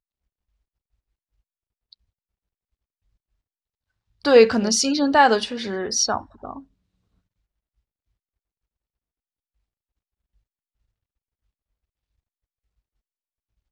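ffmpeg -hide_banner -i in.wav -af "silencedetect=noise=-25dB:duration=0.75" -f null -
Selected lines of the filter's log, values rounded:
silence_start: 0.00
silence_end: 4.25 | silence_duration: 4.25
silence_start: 6.53
silence_end: 13.71 | silence_duration: 7.18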